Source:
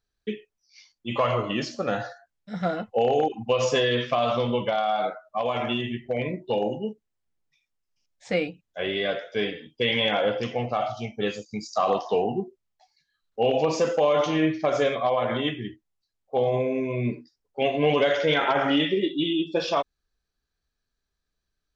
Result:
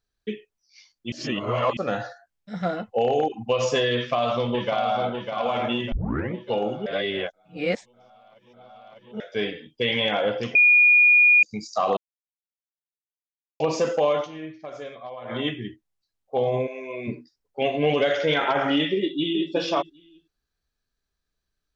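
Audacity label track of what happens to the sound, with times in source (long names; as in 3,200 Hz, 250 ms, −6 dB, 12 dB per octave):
1.120000	1.770000	reverse
3.940000	5.120000	delay throw 600 ms, feedback 50%, level −6 dB
5.920000	5.920000	tape start 0.42 s
6.860000	9.200000	reverse
10.550000	11.430000	beep over 2,440 Hz −12 dBFS
11.970000	13.600000	silence
14.110000	15.410000	duck −14 dB, fades 0.17 s
16.660000	17.070000	high-pass filter 890 Hz → 340 Hz
17.790000	18.220000	notch filter 970 Hz, Q 5.4
18.960000	19.510000	delay throw 380 ms, feedback 10%, level −9 dB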